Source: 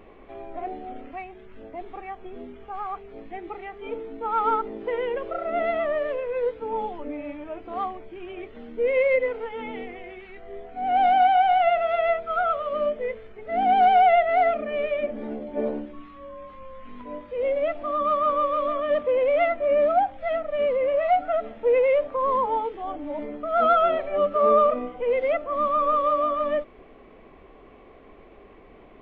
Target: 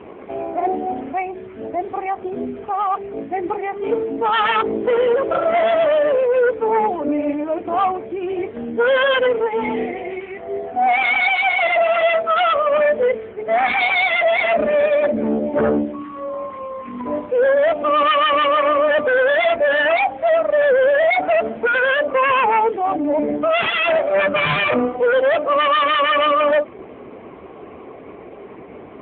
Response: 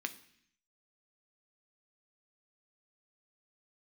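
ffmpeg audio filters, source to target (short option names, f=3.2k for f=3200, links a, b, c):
-af "lowpass=f=2.3k:p=1,aeval=exprs='0.335*sin(PI/2*4.47*val(0)/0.335)':c=same,volume=-2dB" -ar 8000 -c:a libopencore_amrnb -b:a 6700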